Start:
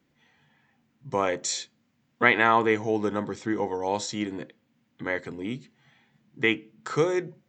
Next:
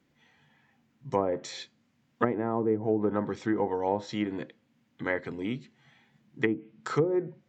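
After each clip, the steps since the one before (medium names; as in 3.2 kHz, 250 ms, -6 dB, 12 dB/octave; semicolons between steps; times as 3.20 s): low-pass that closes with the level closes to 430 Hz, closed at -19.5 dBFS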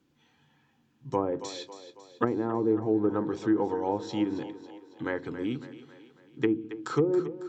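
graphic EQ with 31 bands 200 Hz -4 dB, 315 Hz +5 dB, 630 Hz -7 dB, 2 kHz -10 dB; two-band feedback delay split 320 Hz, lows 101 ms, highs 275 ms, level -12.5 dB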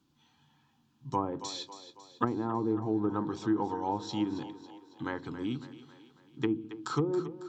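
graphic EQ 500/1000/2000/4000 Hz -10/+5/-8/+4 dB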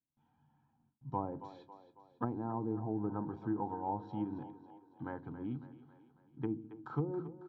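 gate with hold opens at -60 dBFS; low-pass 1 kHz 12 dB/octave; comb 1.3 ms, depth 39%; trim -4.5 dB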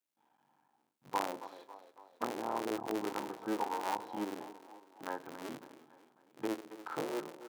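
cycle switcher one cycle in 3, muted; high-pass 440 Hz 12 dB/octave; harmonic-percussive split harmonic +5 dB; trim +3.5 dB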